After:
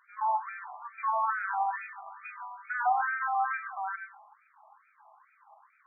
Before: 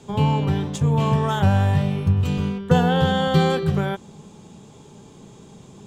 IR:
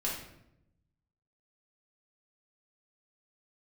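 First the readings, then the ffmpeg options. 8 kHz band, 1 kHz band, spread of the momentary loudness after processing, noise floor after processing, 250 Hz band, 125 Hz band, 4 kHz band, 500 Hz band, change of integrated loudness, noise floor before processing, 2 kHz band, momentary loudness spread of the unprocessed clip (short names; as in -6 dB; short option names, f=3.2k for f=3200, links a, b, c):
n/a, -2.5 dB, 15 LU, -67 dBFS, under -40 dB, under -40 dB, under -40 dB, -22.5 dB, -11.0 dB, -46 dBFS, -2.5 dB, 6 LU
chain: -filter_complex "[0:a]asplit=2[a][b];[b]lowpass=f=4.3k:t=q:w=4.9[c];[1:a]atrim=start_sample=2205,afade=t=out:st=0.2:d=0.01,atrim=end_sample=9261,adelay=103[d];[c][d]afir=irnorm=-1:irlink=0,volume=-13.5dB[e];[a][e]amix=inputs=2:normalize=0,afftfilt=real='re*between(b*sr/1024,880*pow(1800/880,0.5+0.5*sin(2*PI*2.3*pts/sr))/1.41,880*pow(1800/880,0.5+0.5*sin(2*PI*2.3*pts/sr))*1.41)':imag='im*between(b*sr/1024,880*pow(1800/880,0.5+0.5*sin(2*PI*2.3*pts/sr))/1.41,880*pow(1800/880,0.5+0.5*sin(2*PI*2.3*pts/sr))*1.41)':win_size=1024:overlap=0.75"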